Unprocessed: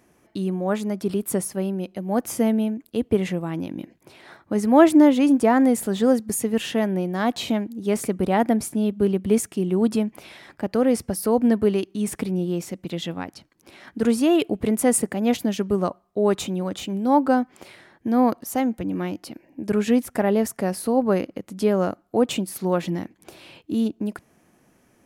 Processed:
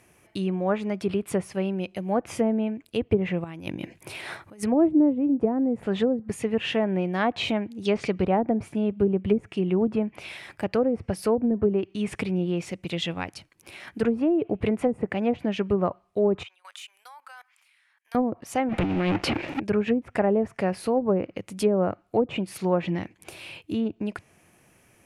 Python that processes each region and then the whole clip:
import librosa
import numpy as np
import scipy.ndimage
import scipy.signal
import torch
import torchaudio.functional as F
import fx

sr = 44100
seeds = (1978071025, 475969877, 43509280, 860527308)

y = fx.chain(x, sr, fx.over_compress(threshold_db=-36.0, ratio=-1.0),
    fx.high_shelf(hz=9200.0, db=3.5), at=(3.44, 4.63))
y = fx.chain(y, sr, fx.lowpass(hz=6700.0, slope=12),
    fx.peak_eq(hz=4700.0, db=13.5, octaves=1.3), at=(7.85, 8.25))
y = fx.chain(y, sr, fx.highpass(hz=1100.0, slope=24),
    fx.level_steps(step_db=23), at=(16.43, 18.15))
y = fx.chain(y, sr, fx.highpass(hz=61.0, slope=6),
    fx.over_compress(threshold_db=-32.0, ratio=-0.5),
    fx.leveller(passes=5), at=(18.69, 19.6))
y = fx.env_lowpass_down(y, sr, base_hz=360.0, full_db=-13.5)
y = fx.graphic_eq_15(y, sr, hz=(100, 250, 2500, 10000), db=(6, -6, 8, 7))